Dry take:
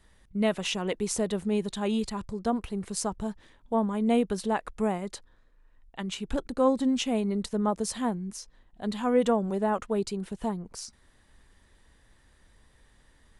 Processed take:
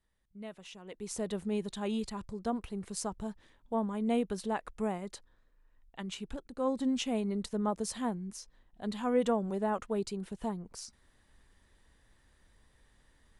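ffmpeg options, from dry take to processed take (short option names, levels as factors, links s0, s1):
-af "volume=1.78,afade=t=in:st=0.86:d=0.45:silence=0.223872,afade=t=out:st=6.24:d=0.17:silence=0.316228,afade=t=in:st=6.41:d=0.47:silence=0.281838"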